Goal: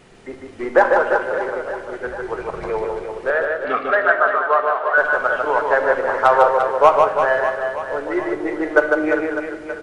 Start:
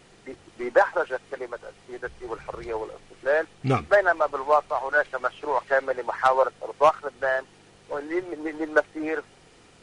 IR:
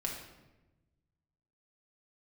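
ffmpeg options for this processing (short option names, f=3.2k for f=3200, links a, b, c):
-filter_complex "[0:a]asettb=1/sr,asplit=3[a][b][c];[a]atrim=end=3.304[d];[b]atrim=start=3.3:end=4.98,asetpts=PTS-STARTPTS,afade=t=in:d=0.004:c=qsin,afade=t=out:st=1.676:d=0.004:c=qsin,highpass=f=350:w=0.5412,highpass=f=350:w=1.3066,equalizer=f=370:t=q:w=4:g=-8,equalizer=f=580:t=q:w=4:g=-5,equalizer=f=850:t=q:w=4:g=-9,equalizer=f=1.3k:t=q:w=4:g=5,equalizer=f=2.4k:t=q:w=4:g=-6,lowpass=f=3.7k:w=0.5412,lowpass=f=3.7k:w=1.3066[e];[c]atrim=start=4.976[f];[d][e]acrossfade=d=0.004:c1=hsin:c2=qsin[g];[g][f]acrossfade=d=0.004:c1=qsin:c2=hsin,aecho=1:1:150|345|598.5|928|1356:0.631|0.398|0.251|0.158|0.1,asplit=2[h][i];[1:a]atrim=start_sample=2205,lowpass=3.2k[j];[i][j]afir=irnorm=-1:irlink=0,volume=-3.5dB[k];[h][k]amix=inputs=2:normalize=0,volume=1.5dB"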